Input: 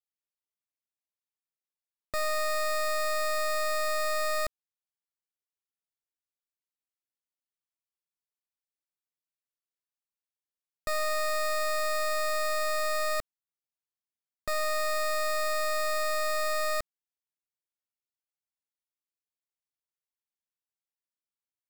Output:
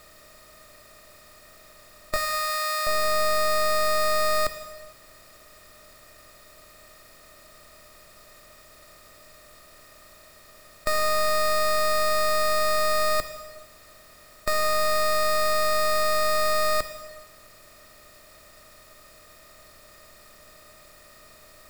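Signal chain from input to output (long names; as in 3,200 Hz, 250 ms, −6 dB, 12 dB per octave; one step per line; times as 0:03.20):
compressor on every frequency bin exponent 0.4
0:02.16–0:02.87: high-pass filter 1,000 Hz 12 dB per octave
in parallel at −2 dB: downward compressor, threshold −38 dBFS, peak gain reduction 10 dB
on the sum: reverb whose tail is shaped and stops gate 490 ms falling, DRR 8.5 dB
level +3.5 dB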